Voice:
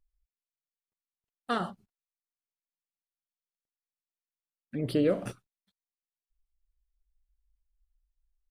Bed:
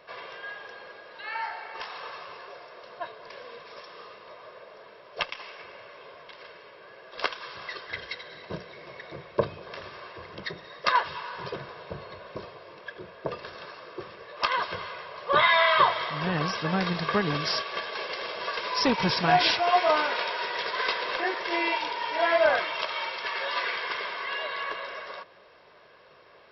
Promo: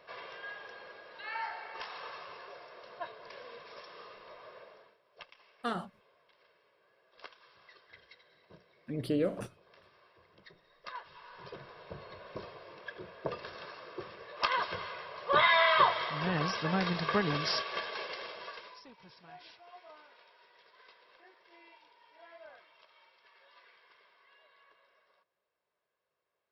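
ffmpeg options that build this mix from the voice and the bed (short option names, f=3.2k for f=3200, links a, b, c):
-filter_complex "[0:a]adelay=4150,volume=-4.5dB[a];[1:a]volume=12dB,afade=t=out:st=4.6:d=0.38:silence=0.158489,afade=t=in:st=11.04:d=1.47:silence=0.141254,afade=t=out:st=17.81:d=1.01:silence=0.0421697[b];[a][b]amix=inputs=2:normalize=0"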